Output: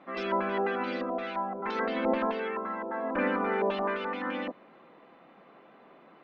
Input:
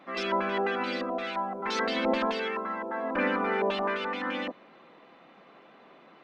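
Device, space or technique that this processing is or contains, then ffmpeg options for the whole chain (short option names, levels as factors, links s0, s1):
through cloth: -filter_complex "[0:a]lowpass=6800,highshelf=f=3700:g=-14,asettb=1/sr,asplit=3[s0][s1][s2];[s0]atrim=end=1.714[s3];[s1]atrim=start=1.71:end=2.63,asetpts=PTS-STARTPTS,afade=t=in:d=0.004:c=qsin,afade=t=out:st=0.916:d=0.004:c=qsin,bass=f=250:g=-1,treble=f=4000:g=-11[s4];[s2]atrim=start=2.626[s5];[s3][s4]acrossfade=d=0.004:c1=hsin:c2=qsin[s6];[s6][s5]acrossfade=d=0.004:c1=qsin:c2=hsin"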